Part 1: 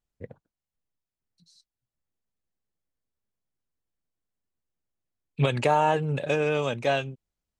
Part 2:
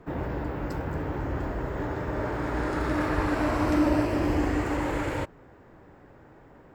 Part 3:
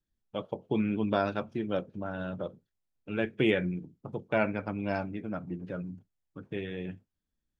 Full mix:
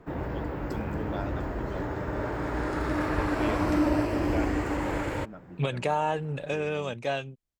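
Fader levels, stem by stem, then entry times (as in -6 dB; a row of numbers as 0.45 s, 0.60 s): -5.0 dB, -1.5 dB, -9.5 dB; 0.20 s, 0.00 s, 0.00 s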